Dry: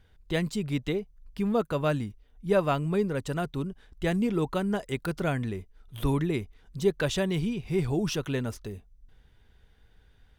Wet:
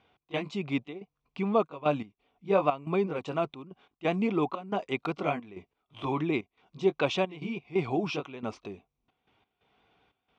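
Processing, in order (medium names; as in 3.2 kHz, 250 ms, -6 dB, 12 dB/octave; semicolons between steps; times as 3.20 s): sawtooth pitch modulation -1 st, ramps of 204 ms; trance gate "x.xxx.xxxx." 89 bpm -12 dB; cabinet simulation 200–5200 Hz, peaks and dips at 300 Hz +3 dB, 740 Hz +9 dB, 1.1 kHz +9 dB, 1.7 kHz -10 dB, 2.4 kHz +9 dB, 4.7 kHz -5 dB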